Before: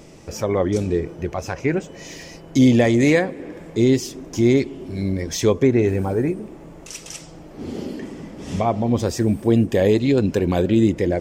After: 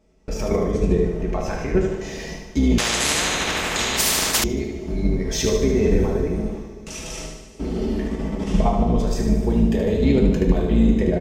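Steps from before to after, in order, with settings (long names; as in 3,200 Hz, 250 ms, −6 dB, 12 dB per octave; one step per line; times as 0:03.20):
sub-octave generator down 2 octaves, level +1 dB
noise gate with hold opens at −26 dBFS
high-shelf EQ 4,100 Hz −6.5 dB
comb filter 4.6 ms, depth 40%
in parallel at +1 dB: downward compressor 6 to 1, threshold −29 dBFS, peak gain reduction 21.5 dB
on the sum: brickwall limiter −11 dBFS, peak gain reduction 11 dB
output level in coarse steps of 9 dB
on a send: repeating echo 75 ms, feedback 56%, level −5.5 dB
on the sum: coupled-rooms reverb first 0.4 s, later 3.4 s, from −18 dB, DRR 1.5 dB
0:02.78–0:04.44: every bin compressed towards the loudest bin 10 to 1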